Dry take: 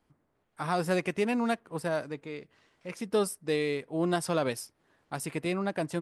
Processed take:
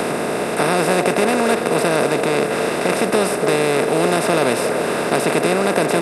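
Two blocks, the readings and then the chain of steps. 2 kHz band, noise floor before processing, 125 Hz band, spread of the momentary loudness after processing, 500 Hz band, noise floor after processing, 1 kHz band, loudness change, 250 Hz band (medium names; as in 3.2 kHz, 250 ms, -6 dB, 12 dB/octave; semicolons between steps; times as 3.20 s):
+16.0 dB, -75 dBFS, +10.5 dB, 3 LU, +15.0 dB, -22 dBFS, +15.5 dB, +13.5 dB, +12.0 dB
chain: spectral levelling over time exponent 0.2; repeats whose band climbs or falls 289 ms, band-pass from 530 Hz, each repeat 1.4 oct, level -5.5 dB; three bands compressed up and down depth 40%; trim +4.5 dB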